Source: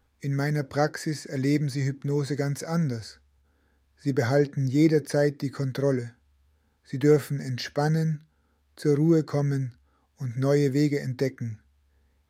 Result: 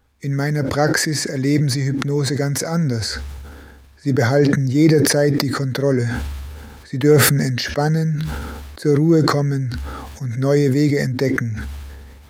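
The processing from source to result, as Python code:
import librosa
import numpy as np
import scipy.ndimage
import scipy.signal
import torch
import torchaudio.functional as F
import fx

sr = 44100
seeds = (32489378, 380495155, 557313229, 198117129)

y = fx.sustainer(x, sr, db_per_s=28.0)
y = y * librosa.db_to_amplitude(6.0)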